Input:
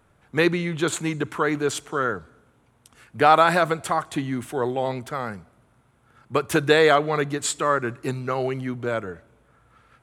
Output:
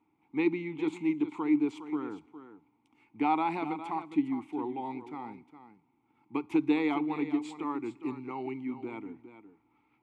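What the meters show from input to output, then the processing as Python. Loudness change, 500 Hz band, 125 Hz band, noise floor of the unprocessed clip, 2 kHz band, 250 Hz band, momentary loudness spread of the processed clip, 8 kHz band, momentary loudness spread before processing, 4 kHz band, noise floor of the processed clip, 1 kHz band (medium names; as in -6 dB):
-9.5 dB, -15.5 dB, -17.5 dB, -61 dBFS, -16.5 dB, -1.5 dB, 15 LU, under -25 dB, 13 LU, -20.0 dB, -72 dBFS, -12.0 dB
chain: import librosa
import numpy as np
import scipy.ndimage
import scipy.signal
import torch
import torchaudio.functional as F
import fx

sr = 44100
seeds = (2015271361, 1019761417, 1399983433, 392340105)

y = fx.vowel_filter(x, sr, vowel='u')
y = y + 10.0 ** (-12.0 / 20.0) * np.pad(y, (int(410 * sr / 1000.0), 0))[:len(y)]
y = F.gain(torch.from_numpy(y), 2.5).numpy()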